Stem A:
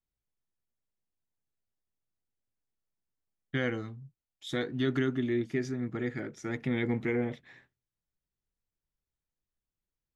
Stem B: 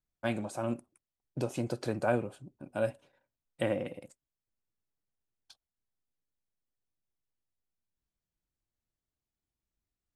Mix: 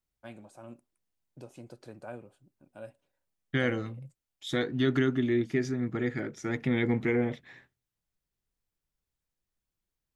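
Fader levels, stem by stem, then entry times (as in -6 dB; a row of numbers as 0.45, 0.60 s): +3.0, -14.0 dB; 0.00, 0.00 s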